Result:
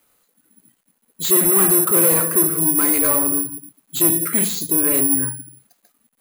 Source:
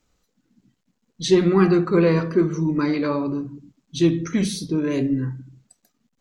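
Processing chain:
mid-hump overdrive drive 24 dB, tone 2,800 Hz, clips at −5 dBFS
bad sample-rate conversion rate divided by 4×, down filtered, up zero stuff
level −8.5 dB

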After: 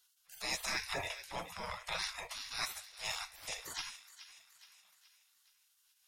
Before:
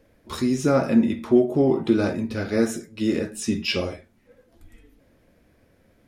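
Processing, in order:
notch comb filter 1,500 Hz
transient designer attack −8 dB, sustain −4 dB
gate on every frequency bin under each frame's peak −30 dB weak
on a send: delay with a high-pass on its return 422 ms, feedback 48%, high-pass 1,500 Hz, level −12.5 dB
on the sum: level +8 dB

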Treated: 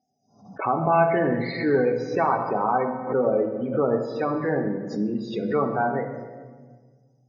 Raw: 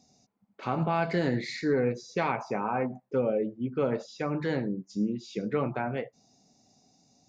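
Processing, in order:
noise gate −55 dBFS, range −15 dB
parametric band 870 Hz +8 dB 2.5 octaves
hum removal 87.69 Hz, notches 7
spectral peaks only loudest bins 32
on a send at −4.5 dB: convolution reverb RT60 1.5 s, pre-delay 3 ms
on the sum: background raised ahead of every attack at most 110 dB per second

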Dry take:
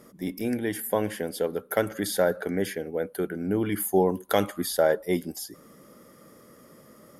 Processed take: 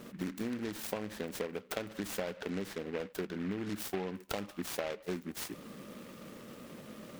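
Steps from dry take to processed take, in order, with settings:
parametric band 210 Hz +5 dB 0.51 octaves
downward compressor 10 to 1, threshold −36 dBFS, peak gain reduction 20 dB
short delay modulated by noise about 1,600 Hz, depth 0.094 ms
level +2 dB

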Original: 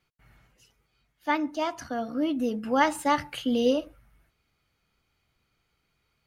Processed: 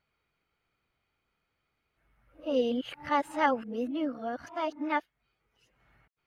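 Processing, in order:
played backwards from end to start
bass and treble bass −6 dB, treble −12 dB
level −3 dB

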